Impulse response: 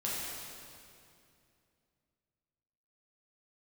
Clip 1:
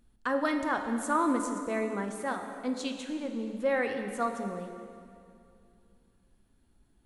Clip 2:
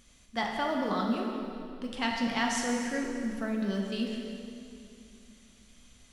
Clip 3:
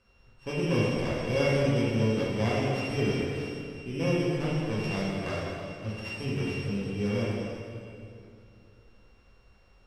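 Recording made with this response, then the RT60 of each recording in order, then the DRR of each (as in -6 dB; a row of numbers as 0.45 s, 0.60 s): 3; 2.5 s, 2.5 s, 2.5 s; 4.5 dB, -1.0 dB, -7.0 dB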